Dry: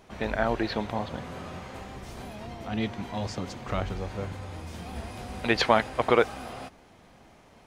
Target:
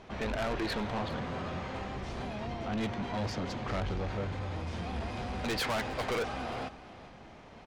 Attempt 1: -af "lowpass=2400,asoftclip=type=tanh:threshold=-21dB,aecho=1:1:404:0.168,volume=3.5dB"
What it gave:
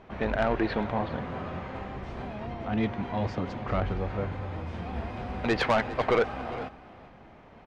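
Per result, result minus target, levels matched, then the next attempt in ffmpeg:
4,000 Hz band −6.0 dB; soft clipping: distortion −6 dB
-af "lowpass=4800,asoftclip=type=tanh:threshold=-21dB,aecho=1:1:404:0.168,volume=3.5dB"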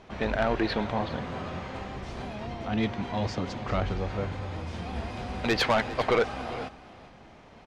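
soft clipping: distortion −6 dB
-af "lowpass=4800,asoftclip=type=tanh:threshold=-33dB,aecho=1:1:404:0.168,volume=3.5dB"

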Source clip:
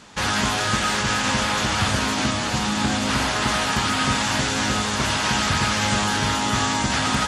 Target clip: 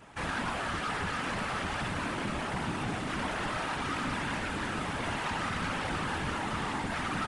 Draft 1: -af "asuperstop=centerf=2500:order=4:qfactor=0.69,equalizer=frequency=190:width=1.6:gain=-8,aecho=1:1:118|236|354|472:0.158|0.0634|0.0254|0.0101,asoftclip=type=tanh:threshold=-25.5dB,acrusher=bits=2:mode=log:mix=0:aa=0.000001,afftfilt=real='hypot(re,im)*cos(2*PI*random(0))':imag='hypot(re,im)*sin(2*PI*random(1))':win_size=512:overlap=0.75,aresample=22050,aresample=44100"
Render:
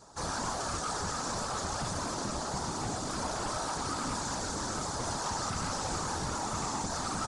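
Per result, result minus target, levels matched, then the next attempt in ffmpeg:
8,000 Hz band +12.0 dB; 250 Hz band −2.0 dB
-af "asuperstop=centerf=5700:order=4:qfactor=0.69,equalizer=frequency=190:width=1.6:gain=-8,aecho=1:1:118|236|354|472:0.158|0.0634|0.0254|0.0101,asoftclip=type=tanh:threshold=-25.5dB,acrusher=bits=2:mode=log:mix=0:aa=0.000001,afftfilt=real='hypot(re,im)*cos(2*PI*random(0))':imag='hypot(re,im)*sin(2*PI*random(1))':win_size=512:overlap=0.75,aresample=22050,aresample=44100"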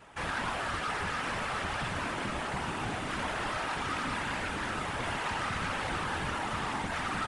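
250 Hz band −3.5 dB
-af "asuperstop=centerf=5700:order=4:qfactor=0.69,aecho=1:1:118|236|354|472:0.158|0.0634|0.0254|0.0101,asoftclip=type=tanh:threshold=-25.5dB,acrusher=bits=2:mode=log:mix=0:aa=0.000001,afftfilt=real='hypot(re,im)*cos(2*PI*random(0))':imag='hypot(re,im)*sin(2*PI*random(1))':win_size=512:overlap=0.75,aresample=22050,aresample=44100"

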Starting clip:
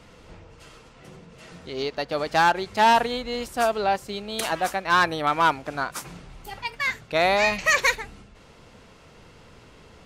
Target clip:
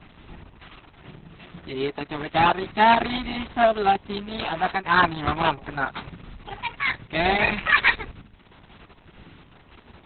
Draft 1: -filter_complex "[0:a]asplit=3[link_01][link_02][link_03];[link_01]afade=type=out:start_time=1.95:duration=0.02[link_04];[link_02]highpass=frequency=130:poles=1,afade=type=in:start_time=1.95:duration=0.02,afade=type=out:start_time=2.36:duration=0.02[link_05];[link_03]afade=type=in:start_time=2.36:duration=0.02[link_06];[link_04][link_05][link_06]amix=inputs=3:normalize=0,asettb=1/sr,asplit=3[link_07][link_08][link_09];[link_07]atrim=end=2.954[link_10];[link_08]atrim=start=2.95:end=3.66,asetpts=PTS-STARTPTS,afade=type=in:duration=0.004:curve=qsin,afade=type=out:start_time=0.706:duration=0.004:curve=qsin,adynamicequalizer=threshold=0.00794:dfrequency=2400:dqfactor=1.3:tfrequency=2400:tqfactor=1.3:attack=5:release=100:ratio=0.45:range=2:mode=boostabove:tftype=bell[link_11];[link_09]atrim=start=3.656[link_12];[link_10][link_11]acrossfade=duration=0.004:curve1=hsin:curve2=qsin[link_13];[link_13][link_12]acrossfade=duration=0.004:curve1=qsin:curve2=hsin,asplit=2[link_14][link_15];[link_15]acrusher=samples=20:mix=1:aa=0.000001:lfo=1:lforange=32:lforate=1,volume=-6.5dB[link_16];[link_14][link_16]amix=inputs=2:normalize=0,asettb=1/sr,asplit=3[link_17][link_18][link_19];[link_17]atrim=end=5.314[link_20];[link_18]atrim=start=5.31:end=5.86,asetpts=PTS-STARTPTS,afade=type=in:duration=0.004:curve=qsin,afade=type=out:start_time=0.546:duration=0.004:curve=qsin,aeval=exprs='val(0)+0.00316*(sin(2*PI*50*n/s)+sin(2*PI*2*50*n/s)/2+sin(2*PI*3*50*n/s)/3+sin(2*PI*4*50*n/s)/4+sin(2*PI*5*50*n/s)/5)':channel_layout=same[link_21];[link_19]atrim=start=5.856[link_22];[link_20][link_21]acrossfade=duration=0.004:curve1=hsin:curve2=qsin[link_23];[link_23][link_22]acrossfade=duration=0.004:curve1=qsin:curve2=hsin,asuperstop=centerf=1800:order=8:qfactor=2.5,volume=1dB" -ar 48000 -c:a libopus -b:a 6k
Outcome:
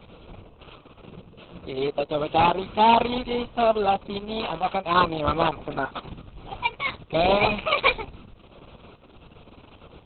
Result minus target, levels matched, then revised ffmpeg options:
2,000 Hz band −5.5 dB
-filter_complex "[0:a]asplit=3[link_01][link_02][link_03];[link_01]afade=type=out:start_time=1.95:duration=0.02[link_04];[link_02]highpass=frequency=130:poles=1,afade=type=in:start_time=1.95:duration=0.02,afade=type=out:start_time=2.36:duration=0.02[link_05];[link_03]afade=type=in:start_time=2.36:duration=0.02[link_06];[link_04][link_05][link_06]amix=inputs=3:normalize=0,asettb=1/sr,asplit=3[link_07][link_08][link_09];[link_07]atrim=end=2.954[link_10];[link_08]atrim=start=2.95:end=3.66,asetpts=PTS-STARTPTS,afade=type=in:duration=0.004:curve=qsin,afade=type=out:start_time=0.706:duration=0.004:curve=qsin,adynamicequalizer=threshold=0.00794:dfrequency=2400:dqfactor=1.3:tfrequency=2400:tqfactor=1.3:attack=5:release=100:ratio=0.45:range=2:mode=boostabove:tftype=bell[link_11];[link_09]atrim=start=3.656[link_12];[link_10][link_11]acrossfade=duration=0.004:curve1=hsin:curve2=qsin[link_13];[link_13][link_12]acrossfade=duration=0.004:curve1=qsin:curve2=hsin,asplit=2[link_14][link_15];[link_15]acrusher=samples=20:mix=1:aa=0.000001:lfo=1:lforange=32:lforate=1,volume=-6.5dB[link_16];[link_14][link_16]amix=inputs=2:normalize=0,asettb=1/sr,asplit=3[link_17][link_18][link_19];[link_17]atrim=end=5.314[link_20];[link_18]atrim=start=5.31:end=5.86,asetpts=PTS-STARTPTS,afade=type=in:duration=0.004:curve=qsin,afade=type=out:start_time=0.546:duration=0.004:curve=qsin,aeval=exprs='val(0)+0.00316*(sin(2*PI*50*n/s)+sin(2*PI*2*50*n/s)/2+sin(2*PI*3*50*n/s)/3+sin(2*PI*4*50*n/s)/4+sin(2*PI*5*50*n/s)/5)':channel_layout=same[link_21];[link_19]atrim=start=5.856[link_22];[link_20][link_21]acrossfade=duration=0.004:curve1=hsin:curve2=qsin[link_23];[link_23][link_22]acrossfade=duration=0.004:curve1=qsin:curve2=hsin,asuperstop=centerf=530:order=8:qfactor=2.5,volume=1dB" -ar 48000 -c:a libopus -b:a 6k

